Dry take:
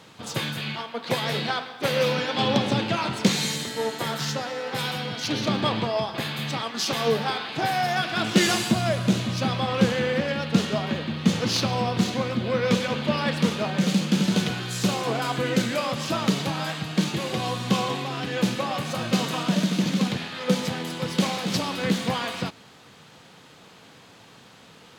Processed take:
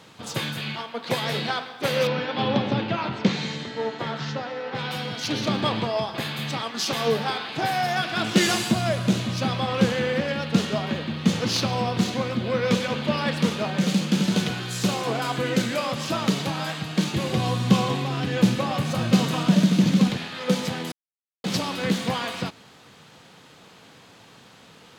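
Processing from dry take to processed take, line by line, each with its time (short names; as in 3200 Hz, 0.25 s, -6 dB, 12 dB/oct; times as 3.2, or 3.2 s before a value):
2.07–4.91 air absorption 190 m
17.16–20.1 low shelf 190 Hz +11 dB
20.92–21.44 mute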